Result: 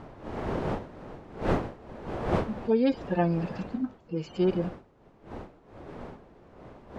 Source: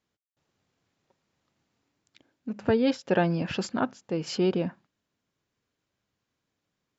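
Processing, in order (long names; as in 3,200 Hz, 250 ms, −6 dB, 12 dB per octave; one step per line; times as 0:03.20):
harmonic-percussive split with one part muted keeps harmonic
wind on the microphone 570 Hz −36 dBFS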